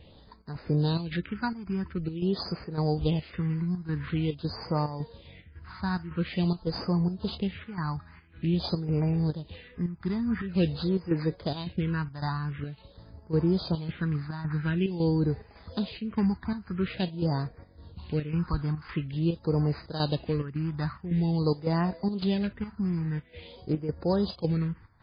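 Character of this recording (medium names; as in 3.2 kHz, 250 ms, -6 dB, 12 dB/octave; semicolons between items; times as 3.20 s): a buzz of ramps at a fixed pitch in blocks of 8 samples; chopped level 1.8 Hz, depth 65%, duty 75%; phasing stages 4, 0.47 Hz, lowest notch 490–3200 Hz; MP3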